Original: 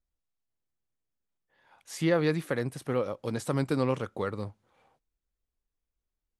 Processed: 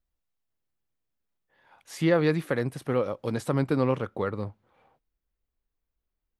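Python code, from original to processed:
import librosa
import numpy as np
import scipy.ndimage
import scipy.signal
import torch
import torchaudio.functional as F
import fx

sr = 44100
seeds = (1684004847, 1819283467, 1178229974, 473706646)

y = fx.peak_eq(x, sr, hz=7700.0, db=fx.steps((0.0, -5.5), (3.49, -12.5)), octaves=1.5)
y = y * 10.0 ** (3.0 / 20.0)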